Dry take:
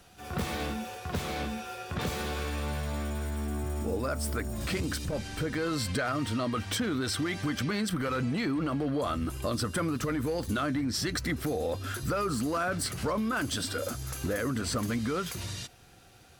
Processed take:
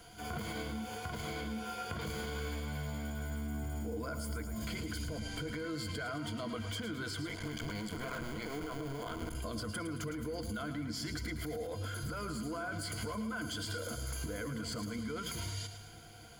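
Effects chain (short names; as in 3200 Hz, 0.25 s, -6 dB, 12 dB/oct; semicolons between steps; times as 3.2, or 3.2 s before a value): 7.27–9.35 cycle switcher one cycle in 2, muted; ripple EQ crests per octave 1.8, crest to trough 13 dB; limiter -25 dBFS, peak gain reduction 9.5 dB; compressor, threshold -37 dBFS, peak gain reduction 9 dB; lo-fi delay 0.11 s, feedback 55%, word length 11-bit, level -9.5 dB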